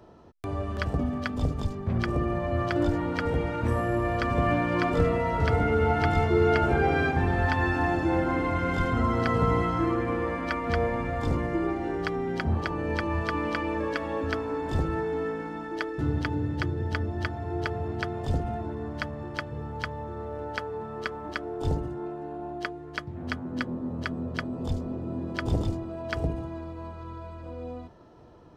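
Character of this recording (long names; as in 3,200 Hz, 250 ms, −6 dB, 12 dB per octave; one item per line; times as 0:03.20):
background noise floor −41 dBFS
spectral slope −6.0 dB per octave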